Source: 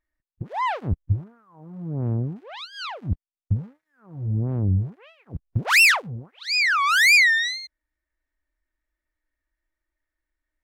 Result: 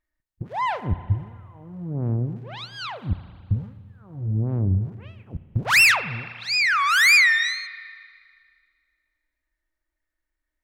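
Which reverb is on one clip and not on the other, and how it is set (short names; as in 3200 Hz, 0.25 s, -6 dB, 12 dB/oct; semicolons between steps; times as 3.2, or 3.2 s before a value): spring tank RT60 2 s, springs 34/55 ms, chirp 80 ms, DRR 12.5 dB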